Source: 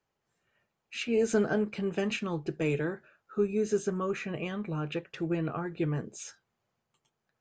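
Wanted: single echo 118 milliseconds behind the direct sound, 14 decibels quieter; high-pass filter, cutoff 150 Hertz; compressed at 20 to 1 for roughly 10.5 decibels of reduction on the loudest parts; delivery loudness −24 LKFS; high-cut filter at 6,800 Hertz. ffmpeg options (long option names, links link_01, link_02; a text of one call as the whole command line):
ffmpeg -i in.wav -af "highpass=150,lowpass=6800,acompressor=threshold=-32dB:ratio=20,aecho=1:1:118:0.2,volume=14dB" out.wav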